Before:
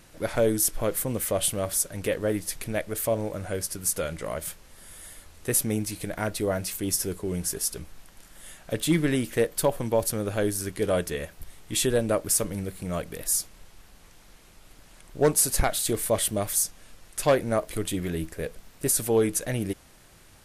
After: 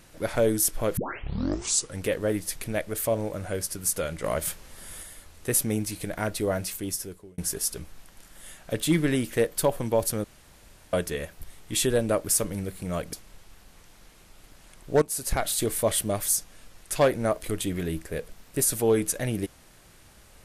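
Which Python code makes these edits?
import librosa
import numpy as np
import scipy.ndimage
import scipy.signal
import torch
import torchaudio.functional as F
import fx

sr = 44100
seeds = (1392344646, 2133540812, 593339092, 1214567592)

y = fx.edit(x, sr, fx.tape_start(start_s=0.97, length_s=1.05),
    fx.clip_gain(start_s=4.24, length_s=0.79, db=4.5),
    fx.fade_out_span(start_s=6.61, length_s=0.77),
    fx.room_tone_fill(start_s=10.24, length_s=0.69),
    fx.cut(start_s=13.13, length_s=0.27),
    fx.fade_in_from(start_s=15.29, length_s=0.49, floor_db=-17.0), tone=tone)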